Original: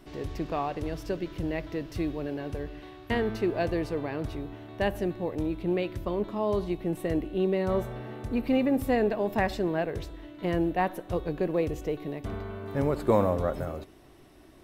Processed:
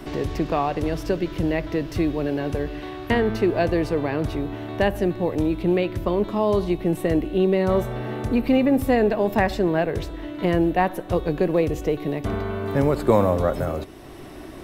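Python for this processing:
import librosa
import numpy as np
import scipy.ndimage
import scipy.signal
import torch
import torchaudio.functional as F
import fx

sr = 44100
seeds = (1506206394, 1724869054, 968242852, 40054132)

y = fx.band_squash(x, sr, depth_pct=40)
y = y * librosa.db_to_amplitude(7.0)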